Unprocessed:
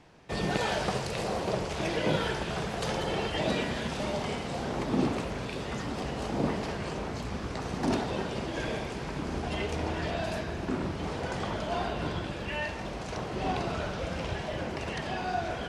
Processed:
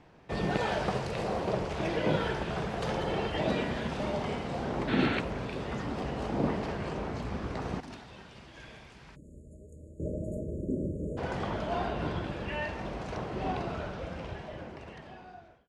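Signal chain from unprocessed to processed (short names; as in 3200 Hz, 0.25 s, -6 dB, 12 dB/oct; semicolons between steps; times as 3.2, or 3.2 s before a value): ending faded out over 2.67 s; high shelf 4000 Hz -11.5 dB; 9.15–11.18 spectral delete 640–6600 Hz; 7.8–10 passive tone stack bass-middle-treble 5-5-5; 4.88–5.19 spectral gain 1300–4500 Hz +12 dB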